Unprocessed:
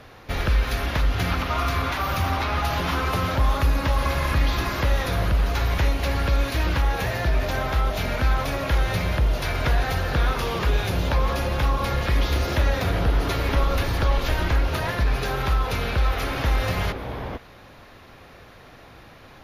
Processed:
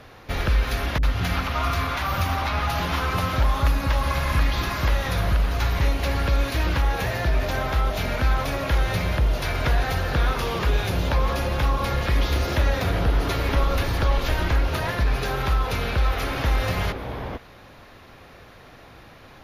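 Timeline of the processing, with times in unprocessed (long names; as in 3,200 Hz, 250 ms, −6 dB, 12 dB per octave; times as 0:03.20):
0:00.98–0:05.81: multiband delay without the direct sound lows, highs 50 ms, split 400 Hz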